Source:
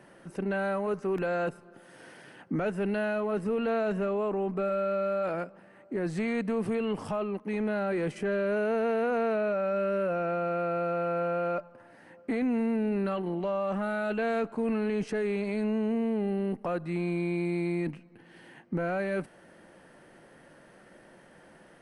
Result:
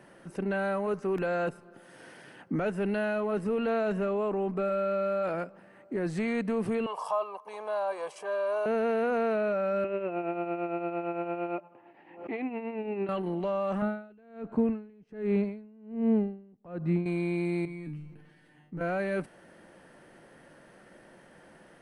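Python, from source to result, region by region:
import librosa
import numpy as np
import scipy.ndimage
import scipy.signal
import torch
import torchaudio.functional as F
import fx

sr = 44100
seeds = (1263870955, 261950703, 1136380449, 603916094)

y = fx.chain(x, sr, fx.highpass_res(hz=880.0, q=5.8),
    fx.peak_eq(hz=1900.0, db=-13.5, octaves=0.92),
    fx.comb(ms=1.8, depth=0.61), at=(6.86, 8.66))
y = fx.chain(y, sr, fx.tremolo(hz=8.8, depth=0.64),
    fx.cabinet(low_hz=180.0, low_slope=12, high_hz=3100.0, hz=(230.0, 350.0, 520.0, 810.0, 1500.0, 2600.0), db=(-8, 9, -7, 7, -10, 6)),
    fx.pre_swell(db_per_s=100.0), at=(9.84, 13.09))
y = fx.chain(y, sr, fx.highpass(hz=97.0, slope=6),
    fx.riaa(side='playback'),
    fx.tremolo_db(hz=1.3, depth_db=32), at=(13.82, 17.06))
y = fx.chain(y, sr, fx.low_shelf(hz=190.0, db=10.5),
    fx.comb_fb(f0_hz=150.0, decay_s=0.35, harmonics='all', damping=0.0, mix_pct=90),
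    fx.sustainer(db_per_s=56.0), at=(17.65, 18.81))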